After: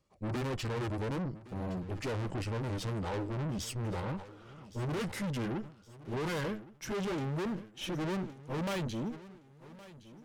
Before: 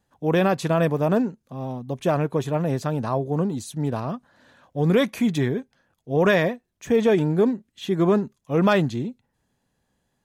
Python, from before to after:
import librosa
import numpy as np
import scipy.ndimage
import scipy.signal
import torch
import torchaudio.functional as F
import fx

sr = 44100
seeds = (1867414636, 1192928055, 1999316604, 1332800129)

p1 = fx.pitch_glide(x, sr, semitones=-6.5, runs='ending unshifted')
p2 = fx.rider(p1, sr, range_db=4, speed_s=0.5)
p3 = p1 + (p2 * librosa.db_to_amplitude(-0.5))
p4 = fx.tube_stage(p3, sr, drive_db=28.0, bias=0.7)
p5 = fx.notch(p4, sr, hz=700.0, q=13.0)
p6 = p5 + fx.echo_feedback(p5, sr, ms=1116, feedback_pct=43, wet_db=-18.0, dry=0)
p7 = fx.sustainer(p6, sr, db_per_s=140.0)
y = p7 * librosa.db_to_amplitude(-5.0)